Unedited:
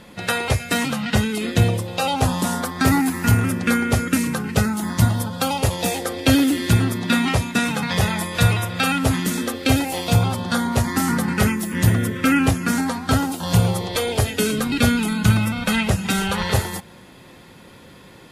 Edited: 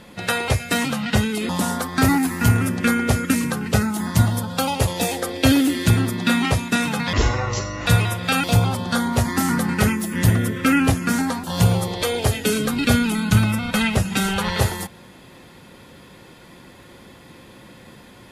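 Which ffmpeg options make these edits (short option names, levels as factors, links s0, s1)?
-filter_complex "[0:a]asplit=6[s0][s1][s2][s3][s4][s5];[s0]atrim=end=1.492[s6];[s1]atrim=start=2.318:end=7.964[s7];[s2]atrim=start=7.96:end=8.38,asetpts=PTS-STARTPTS,asetrate=25137,aresample=44100[s8];[s3]atrim=start=8.376:end=8.952[s9];[s4]atrim=start=10.028:end=13.032[s10];[s5]atrim=start=13.368[s11];[s6][s7]acrossfade=d=0.004:c1=hsin:c2=hsin[s12];[s12][s8]acrossfade=d=0.004:c1=hsin:c2=hsin[s13];[s13][s9]acrossfade=d=0.004:c1=hsin:c2=hsin[s14];[s14][s10]acrossfade=d=0.004:c1=hsin:c2=hsin[s15];[s15][s11]acrossfade=d=0.004:c1=hsin:c2=hsin"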